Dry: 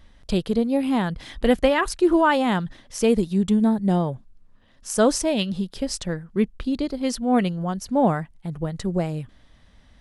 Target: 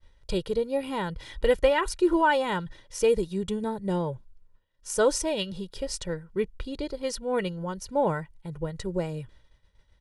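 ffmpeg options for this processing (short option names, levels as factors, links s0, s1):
-af "agate=range=0.0224:threshold=0.00562:ratio=3:detection=peak,aecho=1:1:2.1:0.7,volume=0.531"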